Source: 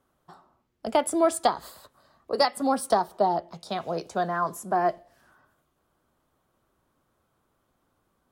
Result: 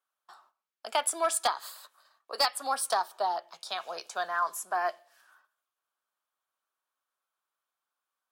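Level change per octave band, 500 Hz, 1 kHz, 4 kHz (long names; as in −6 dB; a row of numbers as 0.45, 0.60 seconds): −9.0, −4.0, +2.0 decibels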